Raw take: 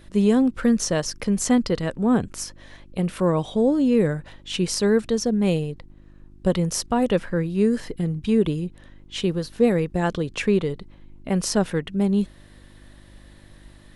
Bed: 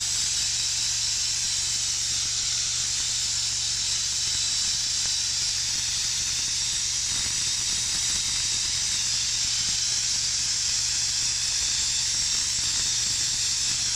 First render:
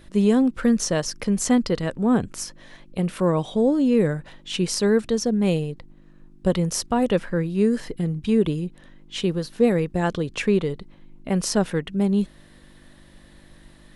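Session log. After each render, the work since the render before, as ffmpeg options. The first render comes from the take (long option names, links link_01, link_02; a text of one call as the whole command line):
ffmpeg -i in.wav -af "bandreject=frequency=50:width_type=h:width=4,bandreject=frequency=100:width_type=h:width=4" out.wav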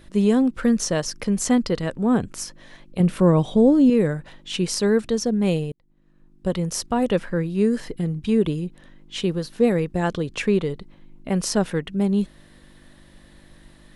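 ffmpeg -i in.wav -filter_complex "[0:a]asettb=1/sr,asplit=3[link_01][link_02][link_03];[link_01]atrim=end=3.004[link_04];[link_02]atrim=start=3:end=3.9,asetpts=PTS-STARTPTS,afade=type=in:duration=0.004:curve=qsin,afade=type=out:start_time=0.896:duration=0.004:curve=qsin,lowshelf=frequency=350:gain=8[link_05];[link_03]atrim=start=3.896[link_06];[link_04][link_05]acrossfade=duration=0.004:curve1=hsin:curve2=qsin[link_07];[link_07][link_06]acrossfade=duration=0.004:curve1=qsin:curve2=hsin,asplit=2[link_08][link_09];[link_08]atrim=end=5.72,asetpts=PTS-STARTPTS,afade=type=out:start_time=5.716:duration=0.004:curve=hsin[link_10];[link_09]atrim=start=5.72,asetpts=PTS-STARTPTS,afade=type=in:duration=1.57:curve=qsin[link_11];[link_10][link_11]concat=n=2:v=0:a=1" out.wav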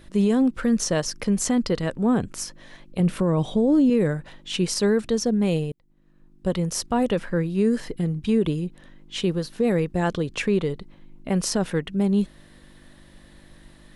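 ffmpeg -i in.wav -af "alimiter=limit=-12.5dB:level=0:latency=1:release=23" out.wav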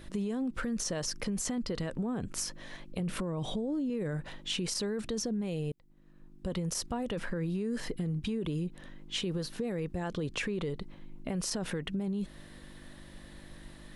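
ffmpeg -i in.wav -af "alimiter=limit=-22.5dB:level=0:latency=1:release=28,acompressor=threshold=-30dB:ratio=6" out.wav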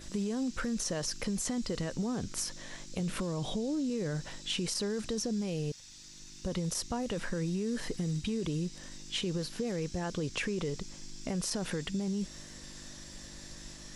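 ffmpeg -i in.wav -i bed.wav -filter_complex "[1:a]volume=-26dB[link_01];[0:a][link_01]amix=inputs=2:normalize=0" out.wav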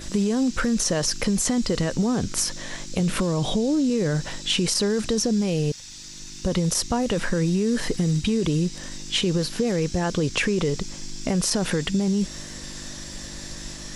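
ffmpeg -i in.wav -af "volume=11dB" out.wav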